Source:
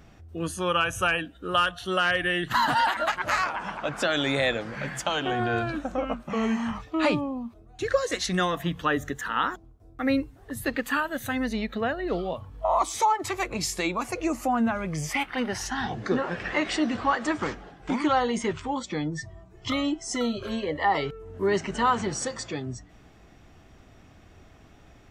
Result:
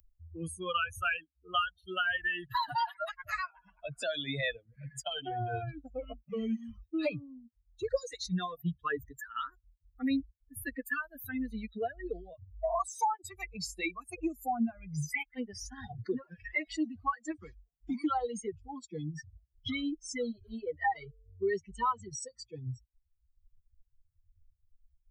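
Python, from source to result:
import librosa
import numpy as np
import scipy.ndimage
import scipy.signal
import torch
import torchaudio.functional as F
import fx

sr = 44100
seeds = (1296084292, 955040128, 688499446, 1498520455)

y = fx.bin_expand(x, sr, power=3.0)
y = fx.band_squash(y, sr, depth_pct=70)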